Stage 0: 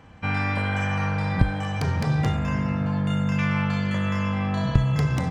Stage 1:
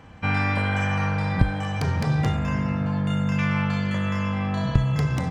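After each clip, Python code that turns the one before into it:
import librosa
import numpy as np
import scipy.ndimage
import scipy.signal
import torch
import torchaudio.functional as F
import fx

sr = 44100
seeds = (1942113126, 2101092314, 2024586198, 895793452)

y = fx.rider(x, sr, range_db=10, speed_s=2.0)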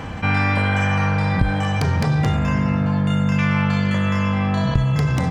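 y = fx.env_flatten(x, sr, amount_pct=50)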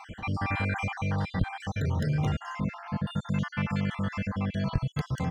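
y = fx.spec_dropout(x, sr, seeds[0], share_pct=48)
y = F.gain(torch.from_numpy(y), -8.5).numpy()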